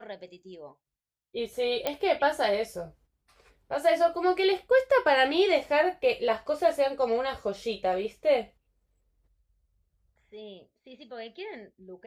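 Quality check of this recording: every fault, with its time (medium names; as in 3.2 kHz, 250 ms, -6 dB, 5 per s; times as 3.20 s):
1.87 s: pop -13 dBFS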